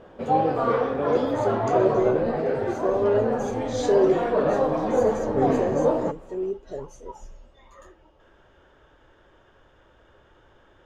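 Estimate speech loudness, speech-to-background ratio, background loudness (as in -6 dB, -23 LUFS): -27.0 LUFS, -2.5 dB, -24.5 LUFS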